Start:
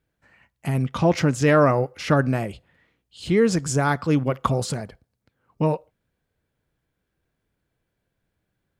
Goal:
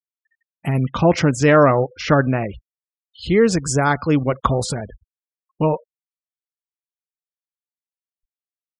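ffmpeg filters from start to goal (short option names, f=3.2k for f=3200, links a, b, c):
-af "asubboost=boost=4.5:cutoff=61,afftfilt=real='re*gte(hypot(re,im),0.0141)':imag='im*gte(hypot(re,im),0.0141)':win_size=1024:overlap=0.75,volume=4.5dB"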